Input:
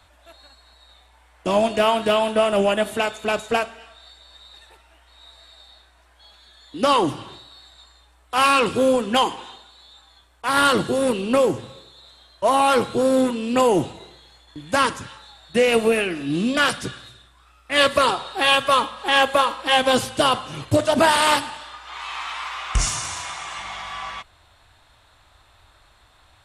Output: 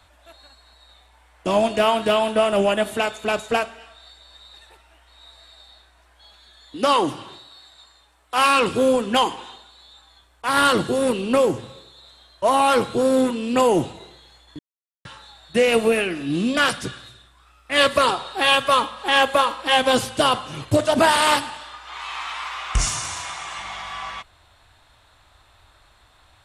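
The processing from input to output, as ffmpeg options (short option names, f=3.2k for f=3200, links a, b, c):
-filter_complex "[0:a]asettb=1/sr,asplit=3[a][b][c];[a]atrim=end=6.764[d];[b]atrim=start=6.76:end=8.57,asetpts=PTS-STARTPTS,afade=t=in:d=0.004:c=qsin,afade=t=out:st=1.806:d=0.004:c=qsin,lowshelf=f=130:g=-9.5[e];[c]atrim=start=8.566[f];[d][e]acrossfade=d=0.004:c1=hsin:c2=qsin[g];[g][f]acrossfade=d=0.004:c1=qsin:c2=hsin,asplit=3[h][i][j];[h]atrim=end=14.59,asetpts=PTS-STARTPTS,afade=t=out:st=14.586:d=0.004:c=hsin[k];[i]atrim=start=14.59:end=15.05,asetpts=PTS-STARTPTS,volume=0[l];[j]atrim=start=15.05,asetpts=PTS-STARTPTS,afade=t=in:d=0.004:c=hsin[m];[k][l][m]concat=n=3:v=0:a=1"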